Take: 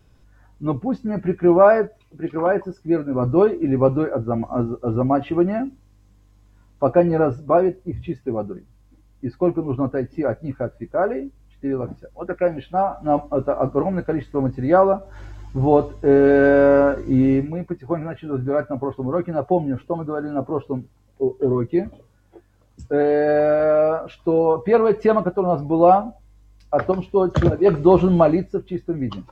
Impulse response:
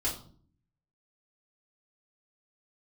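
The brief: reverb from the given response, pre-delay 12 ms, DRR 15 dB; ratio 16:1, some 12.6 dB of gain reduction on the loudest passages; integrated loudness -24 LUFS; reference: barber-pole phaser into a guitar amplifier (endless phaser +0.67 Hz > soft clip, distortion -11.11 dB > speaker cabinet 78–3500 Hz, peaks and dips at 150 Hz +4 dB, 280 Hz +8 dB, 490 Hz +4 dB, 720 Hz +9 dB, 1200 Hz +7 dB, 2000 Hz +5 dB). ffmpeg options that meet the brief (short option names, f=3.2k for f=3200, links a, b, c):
-filter_complex "[0:a]acompressor=threshold=-21dB:ratio=16,asplit=2[a][b];[1:a]atrim=start_sample=2205,adelay=12[c];[b][c]afir=irnorm=-1:irlink=0,volume=-20dB[d];[a][d]amix=inputs=2:normalize=0,asplit=2[e][f];[f]afreqshift=0.67[g];[e][g]amix=inputs=2:normalize=1,asoftclip=threshold=-27dB,highpass=78,equalizer=f=150:t=q:w=4:g=4,equalizer=f=280:t=q:w=4:g=8,equalizer=f=490:t=q:w=4:g=4,equalizer=f=720:t=q:w=4:g=9,equalizer=f=1.2k:t=q:w=4:g=7,equalizer=f=2k:t=q:w=4:g=5,lowpass=f=3.5k:w=0.5412,lowpass=f=3.5k:w=1.3066,volume=5dB"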